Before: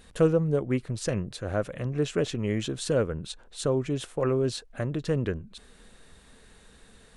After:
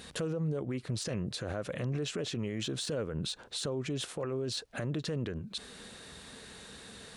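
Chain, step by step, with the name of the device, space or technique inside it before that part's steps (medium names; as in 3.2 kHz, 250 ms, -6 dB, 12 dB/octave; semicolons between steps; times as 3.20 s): broadcast voice chain (high-pass 91 Hz 12 dB/octave; de-esser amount 80%; compression 3:1, threshold -34 dBFS, peak gain reduction 13 dB; peaking EQ 4.4 kHz +5 dB 1.1 oct; peak limiter -33 dBFS, peak gain reduction 10.5 dB); trim +6 dB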